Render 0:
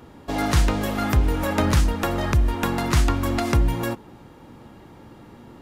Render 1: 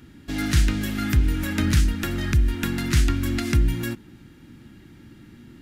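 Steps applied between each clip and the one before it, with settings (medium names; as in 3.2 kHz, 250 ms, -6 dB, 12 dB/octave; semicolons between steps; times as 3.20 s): high-order bell 710 Hz -15.5 dB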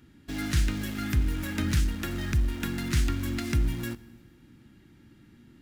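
in parallel at -9.5 dB: bit crusher 5-bit; on the sum: Schroeder reverb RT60 1.6 s, DRR 19.5 dB; trim -8.5 dB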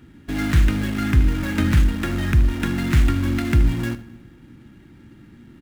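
median filter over 9 samples; delay 76 ms -15.5 dB; trim +9 dB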